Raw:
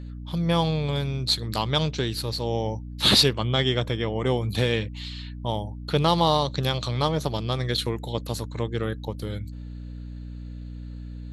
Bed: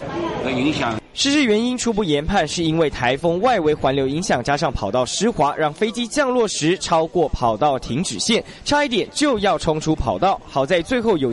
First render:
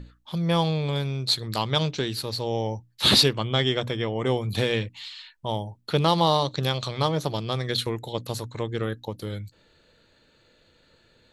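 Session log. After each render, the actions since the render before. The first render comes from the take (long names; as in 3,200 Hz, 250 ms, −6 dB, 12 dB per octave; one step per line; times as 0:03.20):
mains-hum notches 60/120/180/240/300 Hz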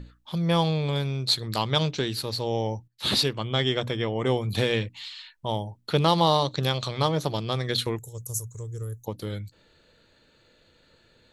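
0:02.88–0:04.14: fade in equal-power, from −12.5 dB
0:07.99–0:09.06: drawn EQ curve 110 Hz 0 dB, 280 Hz −22 dB, 420 Hz −9 dB, 720 Hz −24 dB, 1,200 Hz −17 dB, 2,200 Hz −27 dB, 4,100 Hz −26 dB, 6,200 Hz +10 dB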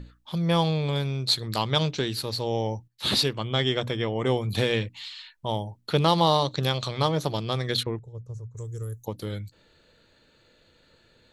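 0:07.83–0:08.57: head-to-tape spacing loss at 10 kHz 42 dB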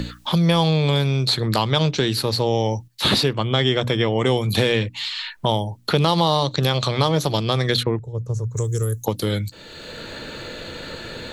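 in parallel at +2.5 dB: brickwall limiter −15.5 dBFS, peak gain reduction 9 dB
on the sum: multiband upward and downward compressor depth 70%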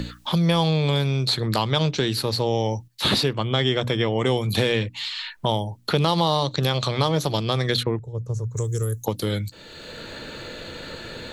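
level −2.5 dB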